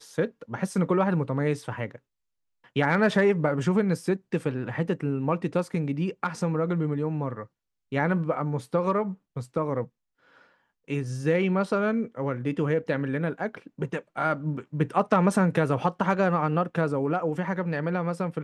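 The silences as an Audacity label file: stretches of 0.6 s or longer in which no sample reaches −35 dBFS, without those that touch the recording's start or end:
1.960000	2.760000	silence
9.850000	10.880000	silence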